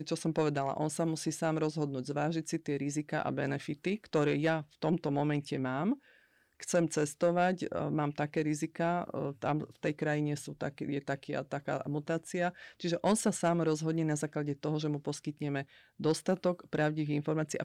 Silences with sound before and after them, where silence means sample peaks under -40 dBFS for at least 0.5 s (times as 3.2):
5.94–6.6